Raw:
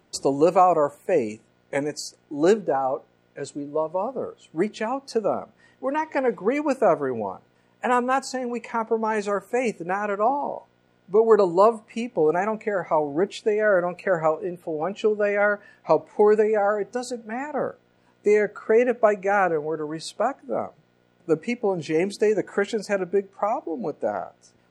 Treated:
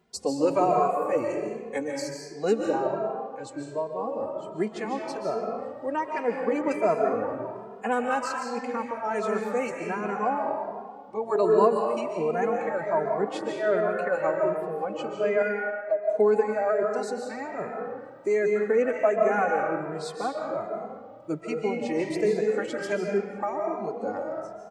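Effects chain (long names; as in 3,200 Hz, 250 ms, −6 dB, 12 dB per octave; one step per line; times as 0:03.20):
0:15.42–0:16.09: pair of resonant band-passes 980 Hz, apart 1.3 octaves
comb and all-pass reverb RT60 1.6 s, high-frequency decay 0.65×, pre-delay 105 ms, DRR 1 dB
barber-pole flanger 2.5 ms +1.3 Hz
level −3 dB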